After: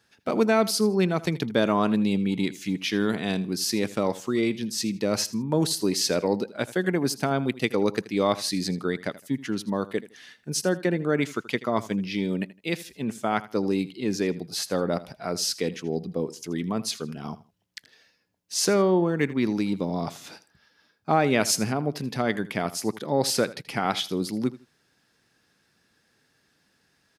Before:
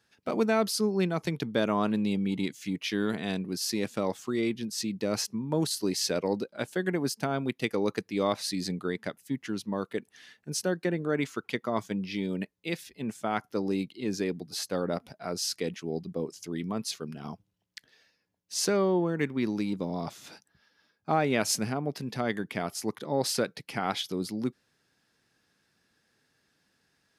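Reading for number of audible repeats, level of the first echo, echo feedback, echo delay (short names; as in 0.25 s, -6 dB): 2, -17.5 dB, 24%, 80 ms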